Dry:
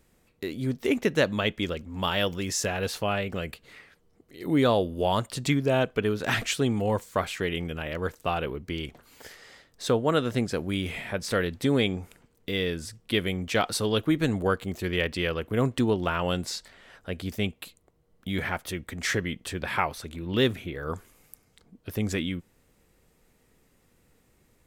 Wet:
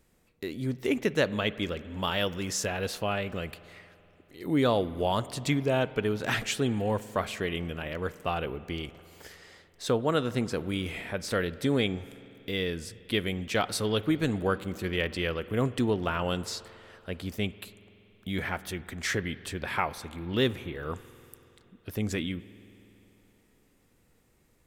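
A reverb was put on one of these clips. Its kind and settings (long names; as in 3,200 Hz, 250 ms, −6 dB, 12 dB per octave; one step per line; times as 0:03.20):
spring reverb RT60 3.2 s, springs 47 ms, chirp 60 ms, DRR 16.5 dB
level −2.5 dB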